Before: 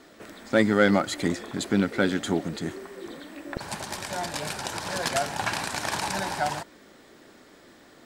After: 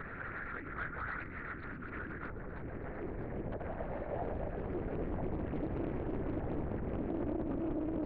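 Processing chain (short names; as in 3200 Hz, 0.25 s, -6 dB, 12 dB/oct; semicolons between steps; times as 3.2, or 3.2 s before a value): compressor, threshold -26 dBFS, peak gain reduction 11 dB; resonant low shelf 410 Hz +9.5 dB, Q 1.5; fixed phaser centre 660 Hz, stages 8; thinning echo 0.125 s, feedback 68%, high-pass 360 Hz, level -6 dB; upward compressor, threshold -29 dBFS; limiter -28 dBFS, peak gain reduction 16 dB; band-pass sweep 1400 Hz -> 350 Hz, 1.46–5.24; soft clip -38 dBFS, distortion -17 dB; LPC vocoder at 8 kHz whisper; Doppler distortion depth 0.89 ms; gain +9 dB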